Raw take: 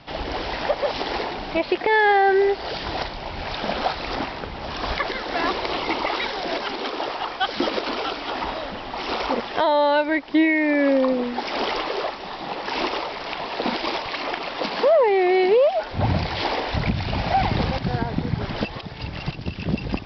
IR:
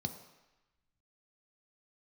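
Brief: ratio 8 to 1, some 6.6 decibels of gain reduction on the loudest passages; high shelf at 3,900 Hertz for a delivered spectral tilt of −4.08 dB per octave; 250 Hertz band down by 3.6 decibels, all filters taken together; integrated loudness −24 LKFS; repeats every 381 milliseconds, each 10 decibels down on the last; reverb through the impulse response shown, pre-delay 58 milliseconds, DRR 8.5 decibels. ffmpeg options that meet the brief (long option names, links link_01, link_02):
-filter_complex "[0:a]equalizer=frequency=250:width_type=o:gain=-5,highshelf=frequency=3900:gain=-8.5,acompressor=threshold=-21dB:ratio=8,aecho=1:1:381|762|1143|1524:0.316|0.101|0.0324|0.0104,asplit=2[link_01][link_02];[1:a]atrim=start_sample=2205,adelay=58[link_03];[link_02][link_03]afir=irnorm=-1:irlink=0,volume=-9dB[link_04];[link_01][link_04]amix=inputs=2:normalize=0,volume=2dB"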